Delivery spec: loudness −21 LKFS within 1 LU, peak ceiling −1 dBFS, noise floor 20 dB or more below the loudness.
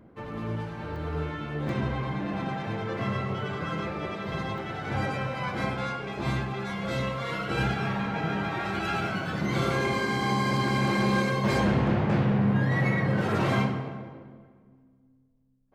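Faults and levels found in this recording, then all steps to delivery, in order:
number of dropouts 4; longest dropout 1.9 ms; integrated loudness −28.5 LKFS; sample peak −14.5 dBFS; target loudness −21.0 LKFS
→ repair the gap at 0:00.96/0:01.69/0:04.58/0:10.68, 1.9 ms
level +7.5 dB

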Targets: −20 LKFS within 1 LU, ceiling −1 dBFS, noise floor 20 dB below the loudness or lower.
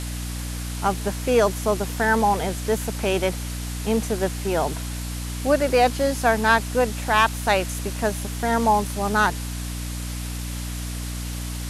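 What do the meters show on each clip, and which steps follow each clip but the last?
mains hum 60 Hz; hum harmonics up to 300 Hz; level of the hum −28 dBFS; background noise floor −30 dBFS; target noise floor −44 dBFS; integrated loudness −23.5 LKFS; sample peak −5.0 dBFS; target loudness −20.0 LKFS
→ mains-hum notches 60/120/180/240/300 Hz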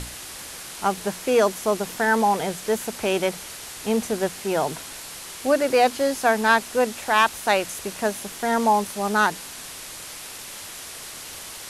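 mains hum none found; background noise floor −38 dBFS; target noise floor −43 dBFS
→ broadband denoise 6 dB, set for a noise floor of −38 dBFS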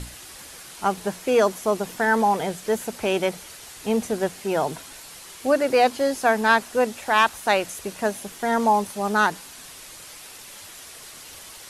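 background noise floor −43 dBFS; integrated loudness −23.0 LKFS; sample peak −5.5 dBFS; target loudness −20.0 LKFS
→ level +3 dB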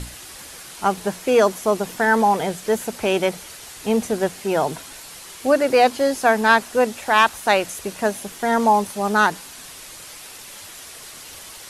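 integrated loudness −20.0 LKFS; sample peak −2.5 dBFS; background noise floor −40 dBFS

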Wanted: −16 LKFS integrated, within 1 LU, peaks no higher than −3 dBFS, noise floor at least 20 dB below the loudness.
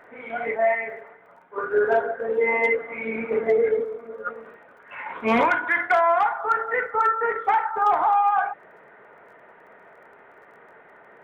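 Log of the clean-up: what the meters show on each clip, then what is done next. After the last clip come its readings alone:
crackle rate 24 per second; integrated loudness −22.5 LKFS; sample peak −12.0 dBFS; target loudness −16.0 LKFS
→ click removal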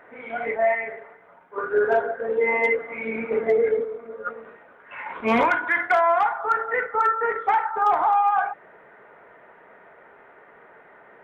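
crackle rate 0 per second; integrated loudness −22.5 LKFS; sample peak −11.5 dBFS; target loudness −16.0 LKFS
→ level +6.5 dB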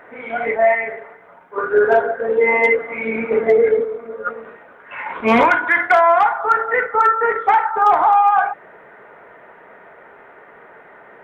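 integrated loudness −16.0 LKFS; sample peak −5.0 dBFS; background noise floor −45 dBFS

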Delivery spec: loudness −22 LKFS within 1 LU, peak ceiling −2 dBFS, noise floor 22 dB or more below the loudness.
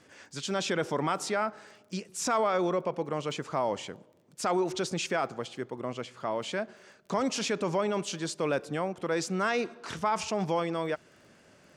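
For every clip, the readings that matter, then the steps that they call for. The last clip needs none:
crackle rate 23 per second; integrated loudness −31.5 LKFS; sample peak −17.0 dBFS; target loudness −22.0 LKFS
→ click removal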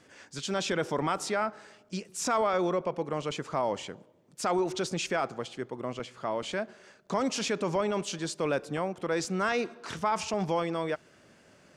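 crackle rate 0 per second; integrated loudness −31.5 LKFS; sample peak −17.0 dBFS; target loudness −22.0 LKFS
→ level +9.5 dB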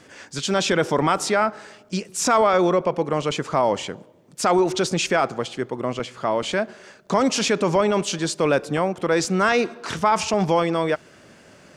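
integrated loudness −22.0 LKFS; sample peak −7.5 dBFS; background noise floor −50 dBFS

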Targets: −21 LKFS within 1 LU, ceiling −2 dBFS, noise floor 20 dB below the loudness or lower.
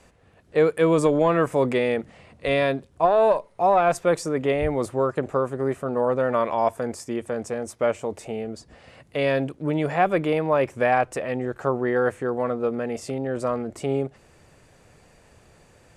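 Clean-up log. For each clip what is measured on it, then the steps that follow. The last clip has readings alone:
integrated loudness −24.0 LKFS; sample peak −7.5 dBFS; target loudness −21.0 LKFS
→ level +3 dB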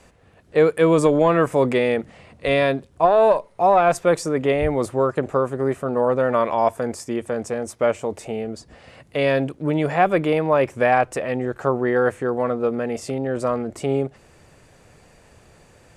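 integrated loudness −21.0 LKFS; sample peak −4.5 dBFS; background noise floor −53 dBFS

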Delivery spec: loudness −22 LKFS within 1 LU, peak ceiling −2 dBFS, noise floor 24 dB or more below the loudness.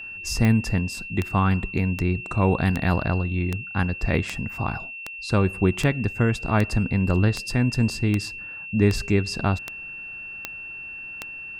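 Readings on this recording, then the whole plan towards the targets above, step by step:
number of clicks 15; interfering tone 2,700 Hz; level of the tone −34 dBFS; integrated loudness −24.5 LKFS; sample peak −6.5 dBFS; target loudness −22.0 LKFS
→ click removal
notch filter 2,700 Hz, Q 30
level +2.5 dB

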